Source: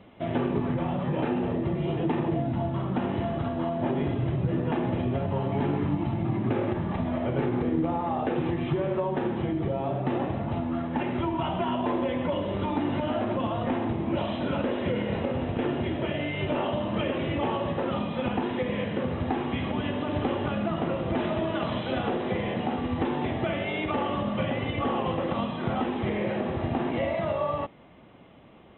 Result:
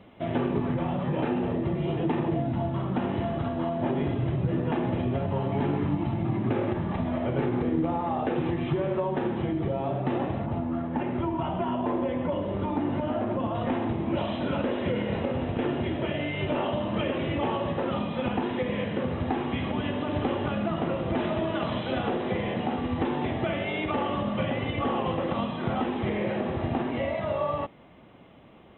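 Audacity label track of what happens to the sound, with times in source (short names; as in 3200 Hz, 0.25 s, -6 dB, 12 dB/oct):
10.460000	13.550000	high shelf 2600 Hz -12 dB
26.820000	27.320000	notch comb 170 Hz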